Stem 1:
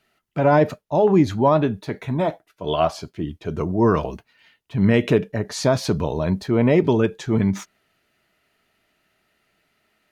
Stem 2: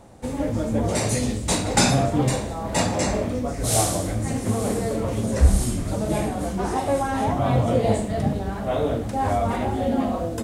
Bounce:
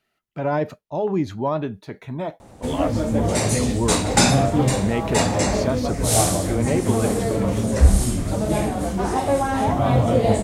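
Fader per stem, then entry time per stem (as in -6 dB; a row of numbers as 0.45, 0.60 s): -6.5, +2.5 dB; 0.00, 2.40 s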